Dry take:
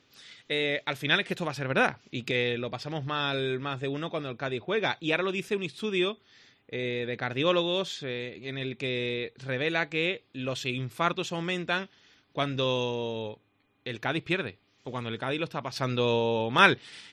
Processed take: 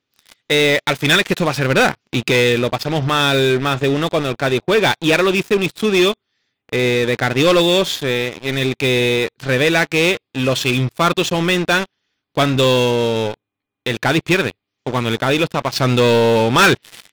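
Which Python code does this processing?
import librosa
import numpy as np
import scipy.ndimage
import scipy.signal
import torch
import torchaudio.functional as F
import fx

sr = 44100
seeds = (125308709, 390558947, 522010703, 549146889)

y = fx.leveller(x, sr, passes=5)
y = F.gain(torch.from_numpy(y), -2.5).numpy()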